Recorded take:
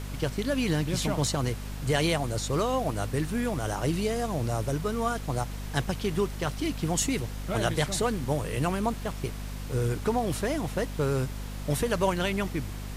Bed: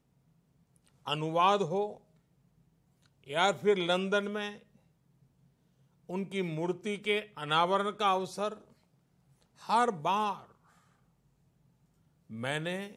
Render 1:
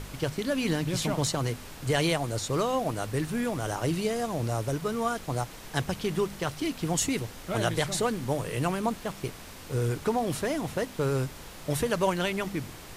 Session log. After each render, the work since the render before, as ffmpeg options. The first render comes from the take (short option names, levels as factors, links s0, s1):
-af "bandreject=f=50:t=h:w=4,bandreject=f=100:t=h:w=4,bandreject=f=150:t=h:w=4,bandreject=f=200:t=h:w=4,bandreject=f=250:t=h:w=4"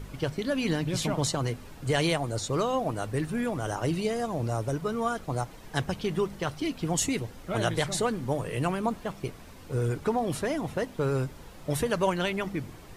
-af "afftdn=nr=9:nf=-45"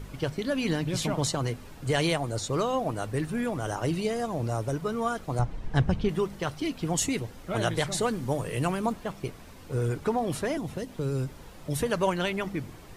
-filter_complex "[0:a]asettb=1/sr,asplit=3[s0][s1][s2];[s0]atrim=end=5.394[s3];[s1]atrim=start=5.39:end=6.09,asetpts=PTS-STARTPTS,afade=t=in:d=0.004:c=qsin,afade=t=out:st=0.696:d=0.004:c=qsin,aemphasis=mode=reproduction:type=bsi[s4];[s2]atrim=start=6.086[s5];[s3][s4]acrossfade=d=0.004:c1=hsin:c2=qsin[s6];[s6][s5]acrossfade=d=0.004:c1=qsin:c2=hsin,asettb=1/sr,asplit=3[s7][s8][s9];[s7]atrim=end=8.014[s10];[s8]atrim=start=8.01:end=8.93,asetpts=PTS-STARTPTS,afade=t=in:d=0.004:c=qsin,afade=t=out:st=0.916:d=0.004:c=qsin,bass=f=250:g=1,treble=f=4000:g=4[s11];[s9]atrim=start=8.926[s12];[s10][s11]acrossfade=d=0.004:c1=hsin:c2=qsin[s13];[s13][s12]acrossfade=d=0.004:c1=qsin:c2=hsin,asettb=1/sr,asplit=3[s14][s15][s16];[s14]atrim=end=10.574[s17];[s15]atrim=start=10.57:end=11.81,asetpts=PTS-STARTPTS,afade=t=in:d=0.004:c=qsin,afade=t=out:st=1.236:d=0.004:c=qsin,acrossover=split=410|3000[s18][s19][s20];[s19]acompressor=threshold=0.00794:ratio=6:attack=3.2:release=140:knee=2.83:detection=peak[s21];[s18][s21][s20]amix=inputs=3:normalize=0[s22];[s16]atrim=start=11.806[s23];[s17][s22]acrossfade=d=0.004:c1=hsin:c2=qsin[s24];[s24][s23]acrossfade=d=0.004:c1=qsin:c2=hsin"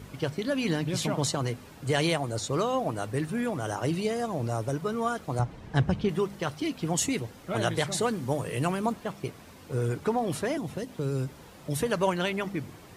-af "highpass=83"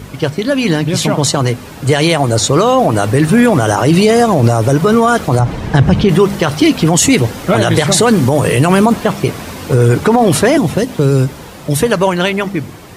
-af "dynaudnorm=f=220:g=21:m=3.35,alimiter=level_in=5.31:limit=0.891:release=50:level=0:latency=1"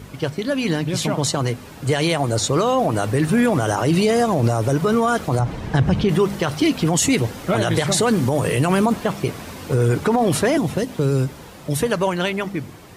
-af "volume=0.398"